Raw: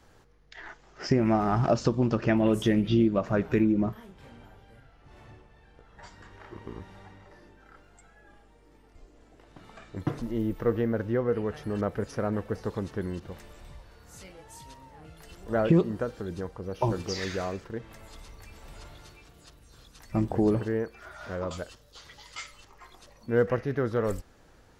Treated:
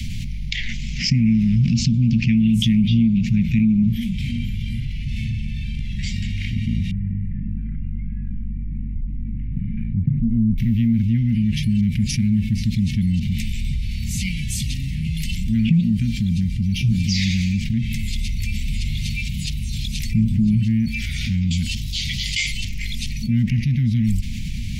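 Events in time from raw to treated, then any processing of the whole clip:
6.91–10.58 s: low-pass 1.3 kHz 24 dB/octave
whole clip: Chebyshev band-stop 230–2200 Hz, order 5; treble shelf 3.5 kHz -10.5 dB; level flattener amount 70%; trim +6 dB

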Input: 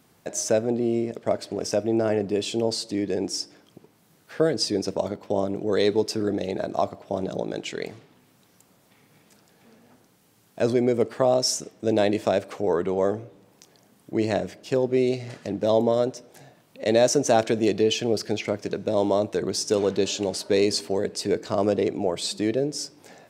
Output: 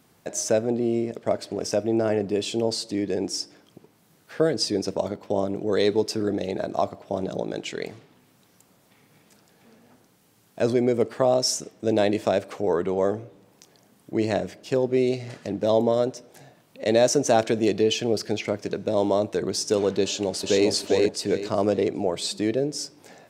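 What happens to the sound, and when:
20.03–20.68 s: echo throw 400 ms, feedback 30%, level -2 dB

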